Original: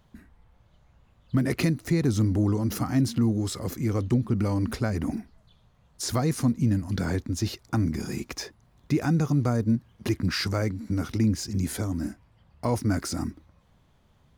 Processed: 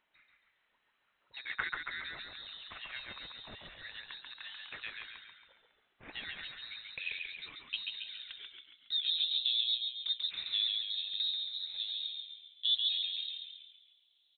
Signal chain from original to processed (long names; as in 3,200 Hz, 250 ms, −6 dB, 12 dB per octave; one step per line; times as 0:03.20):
band-pass filter sweep 2,400 Hz → 510 Hz, 0:06.17–0:09.09
voice inversion scrambler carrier 4,000 Hz
echo with shifted repeats 138 ms, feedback 50%, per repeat −52 Hz, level −3.5 dB